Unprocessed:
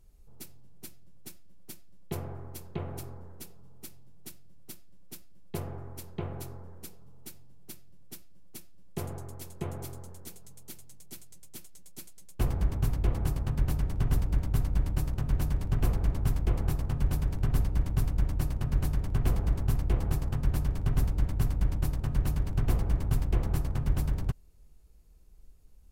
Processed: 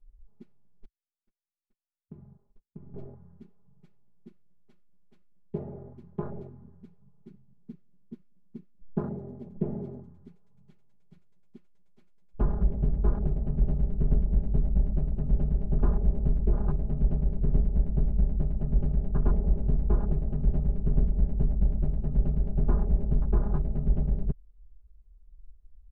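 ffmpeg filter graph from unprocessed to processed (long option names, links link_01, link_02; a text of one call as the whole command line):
ffmpeg -i in.wav -filter_complex "[0:a]asettb=1/sr,asplit=3[link_01][link_02][link_03];[link_01]atrim=end=0.854[link_04];[link_02]atrim=start=0.85:end=2.94,asetpts=PTS-STARTPTS,afade=type=in:duration=0.004:curve=qsin,afade=type=out:start_time=2.086:duration=0.004:curve=qsin,agate=range=-50dB:threshold=-39dB:ratio=16:release=100:detection=peak,tiltshelf=frequency=1400:gain=5,acompressor=threshold=-49dB:ratio=2.5:attack=3.2:release=140:knee=1:detection=peak[link_05];[link_03]atrim=start=2.936[link_06];[link_04][link_05]acrossfade=duration=0.004:curve1=hsin:curve2=qsin[link_07];[link_07][link_06]acrossfade=duration=0.004:curve1=qsin:curve2=hsin,asettb=1/sr,asplit=3[link_08][link_09][link_10];[link_08]atrim=end=7.284[link_11];[link_09]atrim=start=7.28:end=10.04,asetpts=PTS-STARTPTS,afade=type=in:duration=0.004:curve=qsin,afade=type=out:start_time=2.756:duration=0.004:curve=qsin,equalizer=frequency=220:width_type=o:width=1.1:gain=8.5,aeval=exprs='0.1*(abs(mod(val(0)/0.1+3,4)-2)-1)':channel_layout=same[link_12];[link_10]atrim=start=10.036[link_13];[link_11][link_12]acrossfade=duration=0.004:curve1=hsin:curve2=qsin[link_14];[link_14][link_13]acrossfade=duration=0.004:curve1=qsin:curve2=hsin,lowpass=1900,afwtdn=0.0112,aecho=1:1:4.9:0.98" out.wav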